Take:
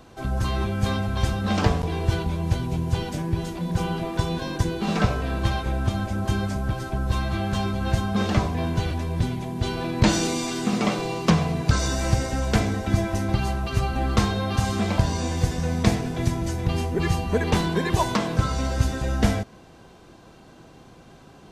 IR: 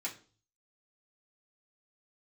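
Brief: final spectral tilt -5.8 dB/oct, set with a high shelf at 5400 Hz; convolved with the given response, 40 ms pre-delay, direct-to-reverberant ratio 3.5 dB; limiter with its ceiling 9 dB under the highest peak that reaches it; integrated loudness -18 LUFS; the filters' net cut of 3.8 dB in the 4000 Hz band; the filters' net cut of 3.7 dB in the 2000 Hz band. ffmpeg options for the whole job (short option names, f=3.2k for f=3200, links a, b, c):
-filter_complex "[0:a]equalizer=f=2k:t=o:g=-4.5,equalizer=f=4k:t=o:g=-6.5,highshelf=f=5.4k:g=7,alimiter=limit=-14.5dB:level=0:latency=1,asplit=2[a][b];[1:a]atrim=start_sample=2205,adelay=40[c];[b][c]afir=irnorm=-1:irlink=0,volume=-5dB[d];[a][d]amix=inputs=2:normalize=0,volume=8dB"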